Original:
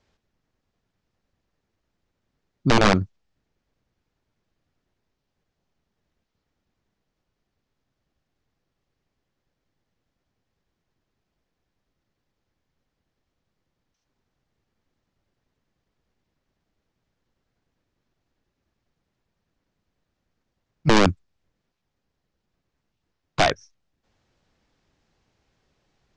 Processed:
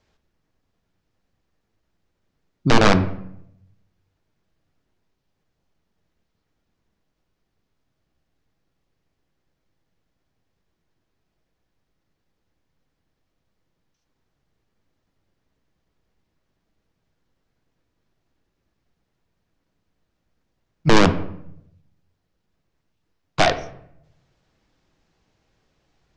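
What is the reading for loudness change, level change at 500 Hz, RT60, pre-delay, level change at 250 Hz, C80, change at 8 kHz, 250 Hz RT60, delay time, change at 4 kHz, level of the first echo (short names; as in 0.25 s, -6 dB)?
+1.5 dB, +2.5 dB, 0.70 s, 6 ms, +2.5 dB, 16.0 dB, +1.5 dB, 0.90 s, none, +1.5 dB, none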